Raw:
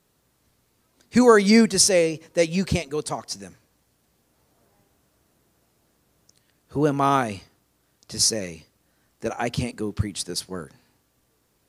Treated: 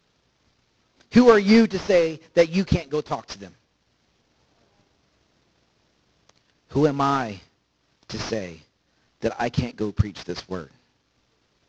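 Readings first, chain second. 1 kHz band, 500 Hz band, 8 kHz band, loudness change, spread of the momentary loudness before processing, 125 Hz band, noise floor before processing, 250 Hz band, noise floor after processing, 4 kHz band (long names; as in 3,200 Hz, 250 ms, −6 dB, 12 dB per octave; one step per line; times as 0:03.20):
−1.0 dB, +1.0 dB, −17.5 dB, −0.5 dB, 19 LU, +2.0 dB, −68 dBFS, +1.0 dB, −69 dBFS, −6.5 dB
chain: variable-slope delta modulation 32 kbit/s
transient designer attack +5 dB, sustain −3 dB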